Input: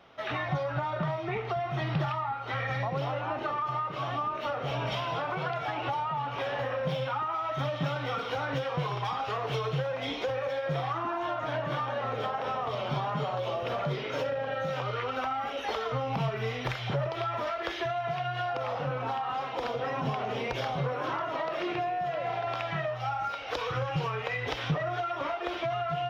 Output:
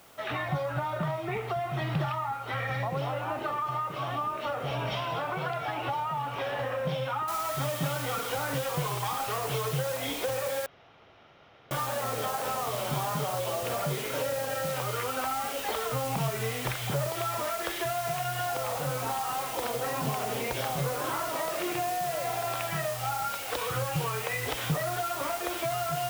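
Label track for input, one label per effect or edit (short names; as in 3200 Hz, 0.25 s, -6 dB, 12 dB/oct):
7.280000	7.280000	noise floor step -59 dB -40 dB
10.660000	11.710000	room tone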